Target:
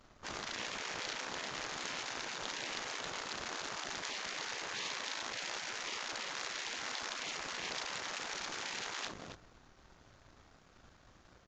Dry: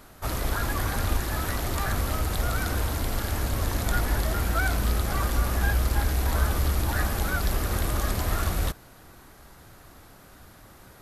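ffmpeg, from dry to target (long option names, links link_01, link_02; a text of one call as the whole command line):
ffmpeg -i in.wav -filter_complex "[0:a]asoftclip=type=tanh:threshold=-15dB,asplit=2[link_01][link_02];[link_02]adelay=135,lowpass=frequency=2000:poles=1,volume=-20.5dB,asplit=2[link_03][link_04];[link_04]adelay=135,lowpass=frequency=2000:poles=1,volume=0.47,asplit=2[link_05][link_06];[link_06]adelay=135,lowpass=frequency=2000:poles=1,volume=0.47[link_07];[link_03][link_05][link_07]amix=inputs=3:normalize=0[link_08];[link_01][link_08]amix=inputs=2:normalize=0,aeval=exprs='sgn(val(0))*max(abs(val(0))-0.00237,0)':channel_layout=same,aeval=exprs='0.178*(cos(1*acos(clip(val(0)/0.178,-1,1)))-cos(1*PI/2))+0.0447*(cos(2*acos(clip(val(0)/0.178,-1,1)))-cos(2*PI/2))+0.0158*(cos(3*acos(clip(val(0)/0.178,-1,1)))-cos(3*PI/2))+0.0398*(cos(7*acos(clip(val(0)/0.178,-1,1)))-cos(7*PI/2))+0.00178*(cos(8*acos(clip(val(0)/0.178,-1,1)))-cos(8*PI/2))':channel_layout=same,aresample=16000,aresample=44100,asplit=2[link_09][link_10];[link_10]aecho=0:1:34.99|262.4:0.282|0.251[link_11];[link_09][link_11]amix=inputs=2:normalize=0,afftfilt=real='re*lt(hypot(re,im),0.0562)':imag='im*lt(hypot(re,im),0.0562)':win_size=1024:overlap=0.75,asetrate=42336,aresample=44100,volume=-4.5dB" out.wav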